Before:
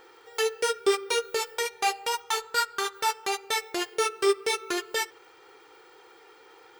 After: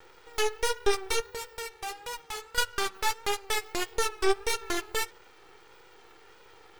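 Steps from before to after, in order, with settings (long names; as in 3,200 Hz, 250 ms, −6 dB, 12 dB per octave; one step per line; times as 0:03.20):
half-wave rectification
pitch vibrato 1.6 Hz 57 cents
0:01.20–0:02.58: tube saturation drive 23 dB, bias 0.5
level +2.5 dB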